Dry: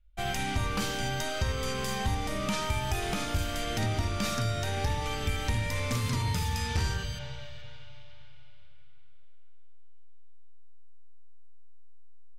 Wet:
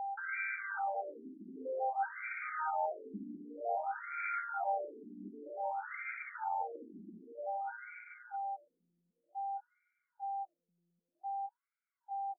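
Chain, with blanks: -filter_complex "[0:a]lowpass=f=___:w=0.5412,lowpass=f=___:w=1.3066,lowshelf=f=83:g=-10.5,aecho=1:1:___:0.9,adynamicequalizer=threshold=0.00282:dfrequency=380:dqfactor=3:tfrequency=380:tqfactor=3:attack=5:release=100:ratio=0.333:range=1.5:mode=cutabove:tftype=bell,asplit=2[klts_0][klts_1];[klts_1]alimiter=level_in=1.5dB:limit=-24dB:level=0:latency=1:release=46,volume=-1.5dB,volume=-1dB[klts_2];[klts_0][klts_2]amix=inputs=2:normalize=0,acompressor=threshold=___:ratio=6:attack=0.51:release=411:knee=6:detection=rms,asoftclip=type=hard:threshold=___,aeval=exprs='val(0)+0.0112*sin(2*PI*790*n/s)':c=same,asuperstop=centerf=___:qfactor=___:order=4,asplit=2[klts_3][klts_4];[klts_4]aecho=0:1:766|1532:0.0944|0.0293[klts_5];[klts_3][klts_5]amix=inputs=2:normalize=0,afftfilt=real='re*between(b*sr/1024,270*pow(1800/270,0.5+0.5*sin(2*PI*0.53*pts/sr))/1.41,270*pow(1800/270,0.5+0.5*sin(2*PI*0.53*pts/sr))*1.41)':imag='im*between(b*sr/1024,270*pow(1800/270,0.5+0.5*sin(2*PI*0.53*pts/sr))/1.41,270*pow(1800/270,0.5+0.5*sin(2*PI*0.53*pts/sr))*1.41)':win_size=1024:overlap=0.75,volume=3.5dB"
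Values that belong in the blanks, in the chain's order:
3000, 3000, 1.4, -27dB, -31dB, 1100, 4.5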